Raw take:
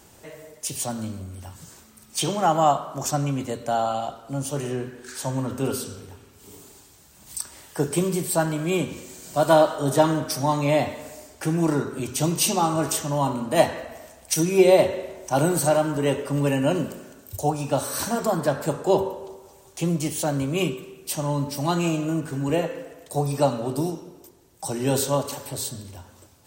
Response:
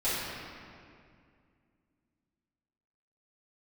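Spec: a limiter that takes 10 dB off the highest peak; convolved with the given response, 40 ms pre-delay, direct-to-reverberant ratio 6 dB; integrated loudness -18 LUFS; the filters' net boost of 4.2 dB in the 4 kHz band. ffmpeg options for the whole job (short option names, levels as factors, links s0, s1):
-filter_complex "[0:a]equalizer=f=4000:t=o:g=5.5,alimiter=limit=0.211:level=0:latency=1,asplit=2[s0][s1];[1:a]atrim=start_sample=2205,adelay=40[s2];[s1][s2]afir=irnorm=-1:irlink=0,volume=0.15[s3];[s0][s3]amix=inputs=2:normalize=0,volume=2.24"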